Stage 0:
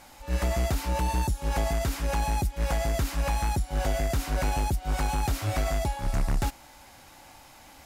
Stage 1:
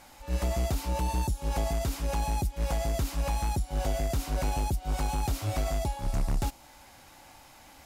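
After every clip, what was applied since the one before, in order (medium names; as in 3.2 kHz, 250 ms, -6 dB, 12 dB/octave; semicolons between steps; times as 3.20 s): dynamic bell 1.7 kHz, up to -6 dB, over -50 dBFS, Q 1.4; trim -2 dB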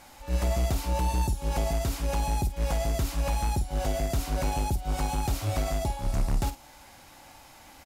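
doubling 50 ms -11 dB; trim +1.5 dB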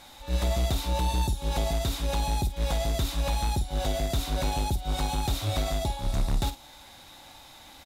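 peaking EQ 3.7 kHz +14 dB 0.26 oct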